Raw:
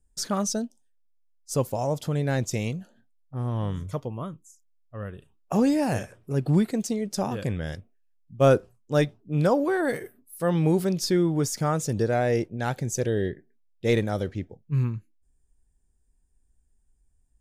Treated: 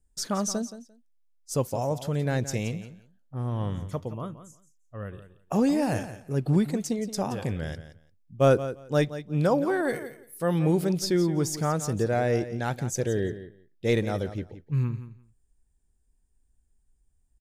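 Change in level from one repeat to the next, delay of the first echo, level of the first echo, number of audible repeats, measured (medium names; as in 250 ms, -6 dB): -16.0 dB, 173 ms, -13.0 dB, 2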